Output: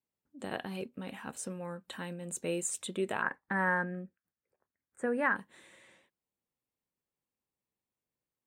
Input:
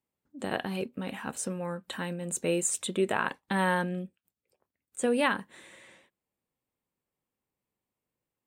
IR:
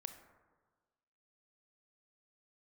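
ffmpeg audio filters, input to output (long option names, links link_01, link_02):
-filter_complex "[0:a]asettb=1/sr,asplit=3[link_01][link_02][link_03];[link_01]atrim=end=3.224[link_04];[link_02]atrim=start=3.22:end=5.36,asetpts=PTS-STARTPTS,afade=type=in:duration=0.004:curve=qsin,afade=type=out:start_time=2.136:duration=0.004:curve=qsin,highshelf=frequency=2400:width_type=q:width=3:gain=-11.5[link_05];[link_03]atrim=start=5.356[link_06];[link_04][link_05]acrossfade=duration=0.004:curve1=hsin:curve2=qsin[link_07];[link_07][link_06]acrossfade=duration=0.004:curve1=qsin:curve2=hsin,volume=-6dB"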